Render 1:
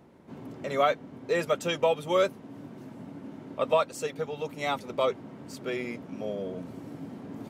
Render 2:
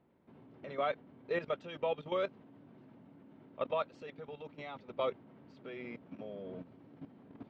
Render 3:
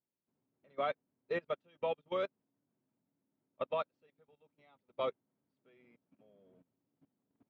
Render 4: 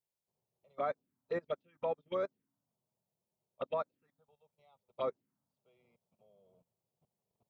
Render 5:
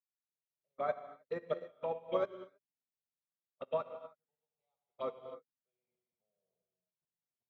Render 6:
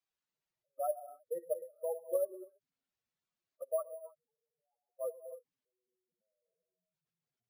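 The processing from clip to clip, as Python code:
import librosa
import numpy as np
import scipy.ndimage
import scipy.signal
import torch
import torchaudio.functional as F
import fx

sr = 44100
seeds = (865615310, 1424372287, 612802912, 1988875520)

y1 = scipy.signal.sosfilt(scipy.signal.butter(4, 3800.0, 'lowpass', fs=sr, output='sos'), x)
y1 = fx.level_steps(y1, sr, step_db=13)
y1 = y1 * librosa.db_to_amplitude(-5.5)
y2 = fx.upward_expand(y1, sr, threshold_db=-49.0, expansion=2.5)
y3 = fx.env_phaser(y2, sr, low_hz=270.0, high_hz=3000.0, full_db=-32.5)
y3 = y3 * librosa.db_to_amplitude(1.0)
y4 = fx.rev_gated(y3, sr, seeds[0], gate_ms=340, shape='flat', drr_db=1.0)
y4 = fx.upward_expand(y4, sr, threshold_db=-47.0, expansion=2.5)
y4 = y4 * librosa.db_to_amplitude(2.0)
y5 = fx.spec_expand(y4, sr, power=3.1)
y5 = np.repeat(y5[::4], 4)[:len(y5)]
y5 = y5 * librosa.db_to_amplitude(1.0)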